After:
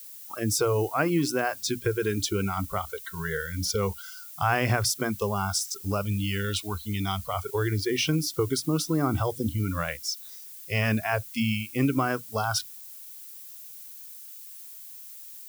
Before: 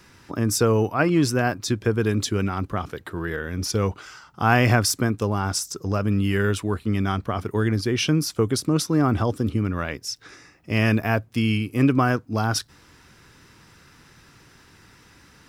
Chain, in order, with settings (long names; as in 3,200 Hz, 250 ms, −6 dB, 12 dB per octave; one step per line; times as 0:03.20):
mains-hum notches 60/120/180/240/300 Hz
noise reduction from a noise print of the clip's start 23 dB
0:06.02–0:07.34: graphic EQ with 15 bands 160 Hz −7 dB, 400 Hz −10 dB, 1,600 Hz −8 dB, 4,000 Hz +10 dB
downward compressor 2 to 1, threshold −24 dBFS, peak gain reduction 6.5 dB
background noise violet −44 dBFS